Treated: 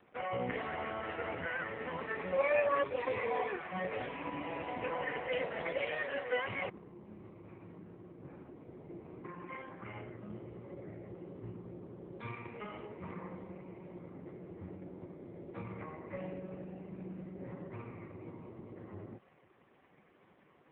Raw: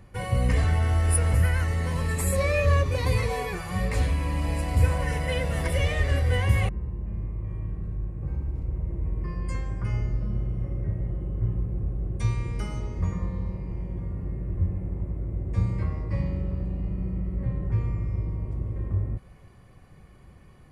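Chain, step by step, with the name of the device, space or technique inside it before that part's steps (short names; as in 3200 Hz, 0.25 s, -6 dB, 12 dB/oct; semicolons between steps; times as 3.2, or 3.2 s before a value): 5.82–6.45 HPF 260 Hz 12 dB/oct; telephone (BPF 310–3200 Hz; gain -1 dB; AMR-NB 4.75 kbps 8000 Hz)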